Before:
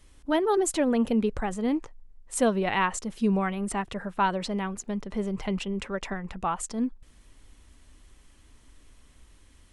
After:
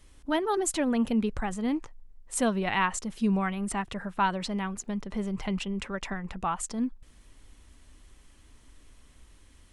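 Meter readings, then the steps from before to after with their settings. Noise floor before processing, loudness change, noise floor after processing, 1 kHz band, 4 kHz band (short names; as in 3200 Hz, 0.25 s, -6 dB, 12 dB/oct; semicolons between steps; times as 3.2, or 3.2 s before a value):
-57 dBFS, -2.0 dB, -57 dBFS, -1.5 dB, 0.0 dB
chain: dynamic EQ 470 Hz, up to -6 dB, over -41 dBFS, Q 1.3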